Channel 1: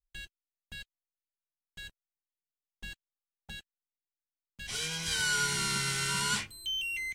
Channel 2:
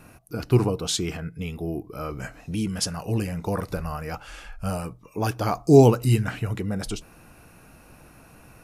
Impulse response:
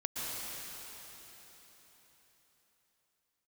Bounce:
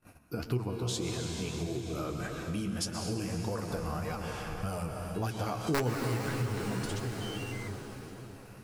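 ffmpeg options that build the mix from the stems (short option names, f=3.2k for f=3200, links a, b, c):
-filter_complex "[0:a]adelay=550,volume=-6dB[a];[1:a]agate=range=-27dB:threshold=-48dB:ratio=16:detection=peak,aeval=exprs='(mod(1.58*val(0)+1,2)-1)/1.58':c=same,volume=-0.5dB,asplit=2[b][c];[c]volume=-4.5dB[d];[2:a]atrim=start_sample=2205[e];[d][e]afir=irnorm=-1:irlink=0[f];[a][b][f]amix=inputs=3:normalize=0,flanger=delay=7.5:depth=9.1:regen=43:speed=1.7:shape=triangular,acompressor=threshold=-33dB:ratio=3"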